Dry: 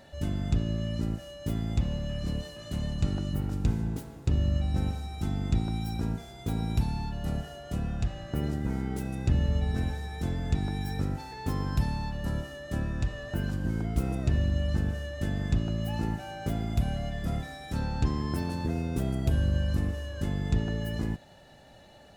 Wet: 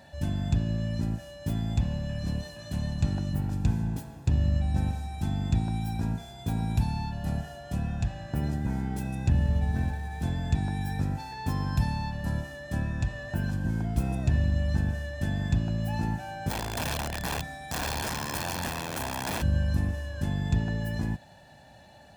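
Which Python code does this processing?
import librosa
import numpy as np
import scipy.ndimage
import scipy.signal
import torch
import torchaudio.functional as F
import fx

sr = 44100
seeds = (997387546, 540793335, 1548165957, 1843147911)

y = fx.median_filter(x, sr, points=9, at=(9.29, 10.22))
y = fx.overflow_wrap(y, sr, gain_db=26.5, at=(16.49, 19.41), fade=0.02)
y = scipy.signal.sosfilt(scipy.signal.butter(2, 59.0, 'highpass', fs=sr, output='sos'), y)
y = y + 0.47 * np.pad(y, (int(1.2 * sr / 1000.0), 0))[:len(y)]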